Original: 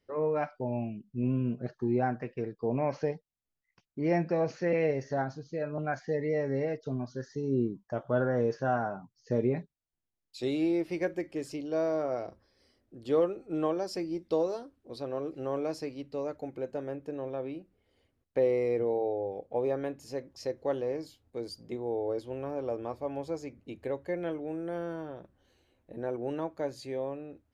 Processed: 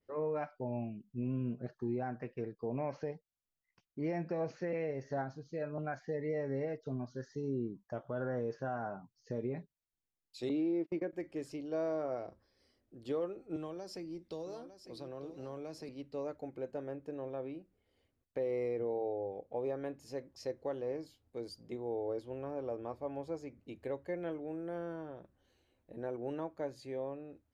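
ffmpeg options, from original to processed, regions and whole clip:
-filter_complex "[0:a]asettb=1/sr,asplit=3[a][b][c];[a]atrim=end=10.494[d];[b]atrim=start=10.49:end=11.13,asetpts=PTS-STARTPTS,afade=t=in:d=0.004:c=qsin,afade=t=out:st=0.636:d=0.004:c=qsin,highpass=150,lowpass=4.2k,equalizer=f=250:t=o:w=2.1:g=8.5,agate=range=-32dB:threshold=-31dB:ratio=16:release=100:detection=peak[e];[c]atrim=start=11.126[f];[d][e]acrossfade=d=0.004:c1=hsin:c2=qsin[g];[g][f]acrossfade=d=0.004:c1=qsin:c2=hsin,asettb=1/sr,asplit=3[h][i][j];[h]atrim=end=13.564[k];[i]atrim=start=13.56:end=15.89,asetpts=PTS-STARTPTS,afade=t=in:d=0.004:c=qsin,afade=t=out:st=2.326:d=0.004:c=qsin,acrossover=split=170|3000[l][m][n];[m]acompressor=threshold=-38dB:ratio=3:attack=3.2:release=140:knee=2.83:detection=peak[o];[l][o][n]amix=inputs=3:normalize=0,aecho=1:1:904:0.251,atrim=end_sample=102753[p];[j]atrim=start=15.886[q];[k][p]acrossfade=d=0.004:c1=hsin:c2=qsin[r];[r][q]acrossfade=d=0.004:c1=qsin:c2=hsin,alimiter=limit=-22.5dB:level=0:latency=1:release=194,adynamicequalizer=threshold=0.00251:dfrequency=2500:dqfactor=0.7:tfrequency=2500:tqfactor=0.7:attack=5:release=100:ratio=0.375:range=2.5:mode=cutabove:tftype=highshelf,volume=-5dB"

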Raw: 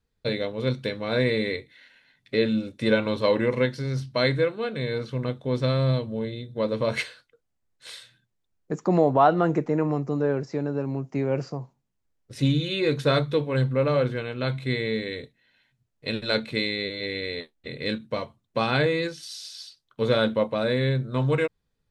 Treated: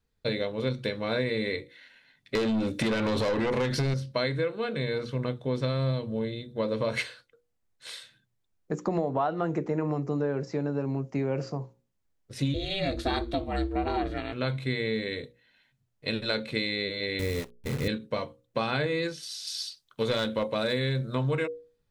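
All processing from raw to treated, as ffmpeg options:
-filter_complex "[0:a]asettb=1/sr,asplit=3[a][b][c];[a]atrim=end=2.354[d];[b]atrim=start=2.35:end=3.94,asetpts=PTS-STARTPTS,afade=t=in:d=0.004:c=qsin,afade=t=out:st=1.586:d=0.004:c=qsin,acompressor=threshold=-26dB:ratio=5:attack=3.2:release=140:knee=1:detection=peak,aeval=exprs='(tanh(35.5*val(0)+0.25)-tanh(0.25))/35.5':c=same,aeval=exprs='0.188*sin(PI/2*3.16*val(0)/0.188)':c=same[e];[c]atrim=start=3.936[f];[d][e]acrossfade=d=0.004:c1=hsin:c2=qsin[g];[g][f]acrossfade=d=0.004:c1=qsin:c2=hsin,asettb=1/sr,asplit=3[h][i][j];[h]atrim=end=12.544[k];[i]atrim=start=12.54:end=14.33,asetpts=PTS-STARTPTS,afade=t=in:d=0.004:c=qsin,afade=t=out:st=1.786:d=0.004:c=qsin,equalizer=f=4.3k:t=o:w=0.26:g=5,aeval=exprs='val(0)*sin(2*PI*200*n/s)':c=same[l];[j]atrim=start=14.326[m];[k][l]acrossfade=d=0.004:c1=hsin:c2=qsin[n];[n][m]acrossfade=d=0.004:c1=qsin:c2=hsin,asettb=1/sr,asplit=3[o][p][q];[o]atrim=end=17.194[r];[p]atrim=start=17.19:end=17.88,asetpts=PTS-STARTPTS,afade=t=in:d=0.004:c=qsin,afade=t=out:st=0.686:d=0.004:c=qsin,aemphasis=mode=reproduction:type=riaa,acrusher=bits=7:dc=4:mix=0:aa=0.000001[s];[q]atrim=start=17.876[t];[r][s]acrossfade=d=0.004:c1=hsin:c2=qsin[u];[u][t]acrossfade=d=0.004:c1=qsin:c2=hsin,asettb=1/sr,asplit=3[v][w][x];[v]atrim=end=19.474[y];[w]atrim=start=19.47:end=21.15,asetpts=PTS-STARTPTS,afade=t=in:d=0.004:c=qsin,afade=t=out:st=1.676:d=0.004:c=qsin,highshelf=f=2.8k:g=8.5,aeval=exprs='clip(val(0),-1,0.126)':c=same[z];[x]atrim=start=21.146[aa];[y][z]acrossfade=d=0.004:c1=hsin:c2=qsin[ab];[ab][aa]acrossfade=d=0.004:c1=qsin:c2=hsin,bandreject=f=60:t=h:w=6,bandreject=f=120:t=h:w=6,bandreject=f=180:t=h:w=6,bandreject=f=240:t=h:w=6,bandreject=f=300:t=h:w=6,bandreject=f=360:t=h:w=6,bandreject=f=420:t=h:w=6,bandreject=f=480:t=h:w=6,bandreject=f=540:t=h:w=6,acompressor=threshold=-24dB:ratio=6"

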